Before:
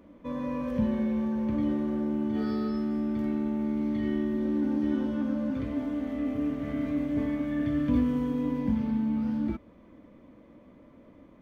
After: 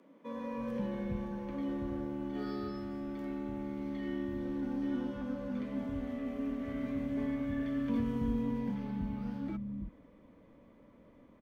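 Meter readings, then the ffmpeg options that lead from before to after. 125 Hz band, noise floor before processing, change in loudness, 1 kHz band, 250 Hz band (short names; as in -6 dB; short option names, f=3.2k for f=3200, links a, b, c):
-5.5 dB, -55 dBFS, -8.0 dB, -4.5 dB, -8.0 dB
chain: -filter_complex "[0:a]acrossover=split=220[a][b];[a]adelay=320[c];[c][b]amix=inputs=2:normalize=0,afreqshift=-17,volume=-4.5dB"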